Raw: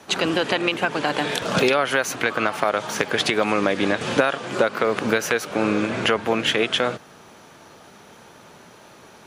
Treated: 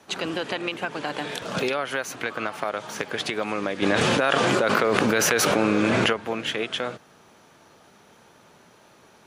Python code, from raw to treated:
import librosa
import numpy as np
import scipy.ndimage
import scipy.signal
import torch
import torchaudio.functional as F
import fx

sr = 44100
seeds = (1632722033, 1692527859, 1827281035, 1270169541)

y = fx.env_flatten(x, sr, amount_pct=100, at=(3.82, 6.13))
y = y * librosa.db_to_amplitude(-7.0)